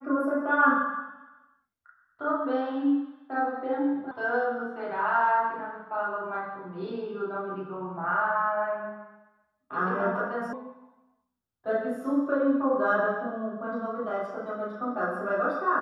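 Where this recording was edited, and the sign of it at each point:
4.11 sound cut off
10.53 sound cut off

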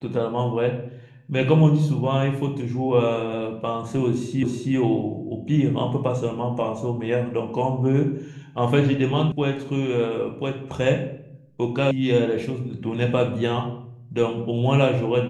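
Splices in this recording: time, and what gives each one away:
4.43 repeat of the last 0.32 s
9.32 sound cut off
11.91 sound cut off

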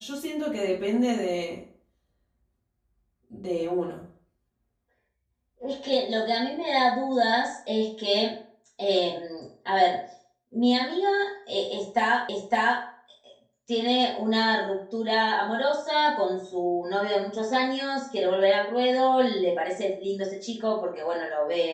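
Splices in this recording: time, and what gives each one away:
12.29 repeat of the last 0.56 s

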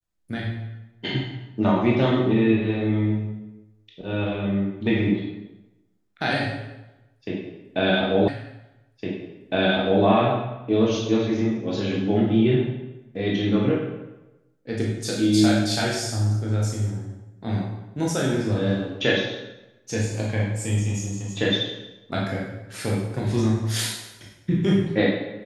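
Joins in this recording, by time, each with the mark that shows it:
8.28 repeat of the last 1.76 s

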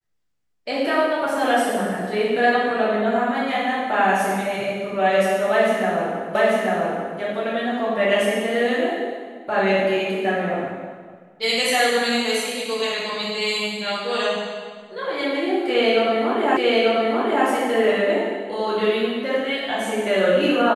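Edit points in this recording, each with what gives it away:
6.35 repeat of the last 0.84 s
16.57 repeat of the last 0.89 s

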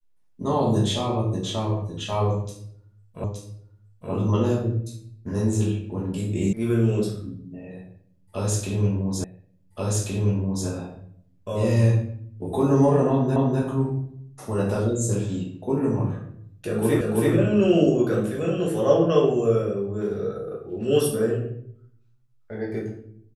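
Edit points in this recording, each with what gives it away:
3.24 repeat of the last 0.87 s
6.53 sound cut off
9.24 repeat of the last 1.43 s
13.36 repeat of the last 0.25 s
17.01 repeat of the last 0.33 s

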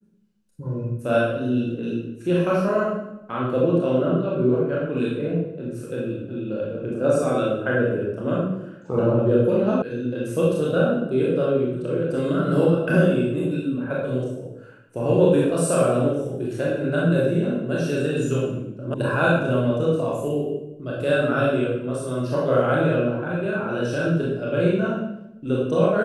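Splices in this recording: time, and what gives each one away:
9.82 sound cut off
18.94 sound cut off

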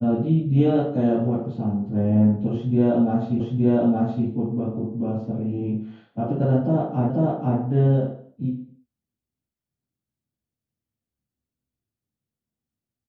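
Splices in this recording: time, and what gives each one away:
3.4 repeat of the last 0.87 s
7.1 repeat of the last 0.49 s

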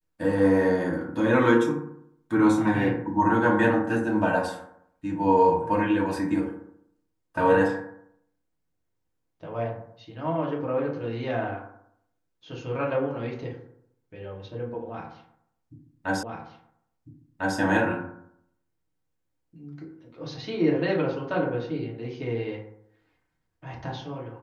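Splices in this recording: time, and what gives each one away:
16.23 repeat of the last 1.35 s

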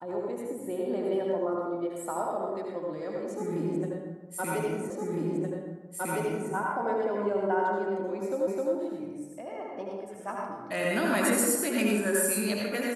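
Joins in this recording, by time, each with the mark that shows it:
4.9 repeat of the last 1.61 s
8.47 repeat of the last 0.26 s

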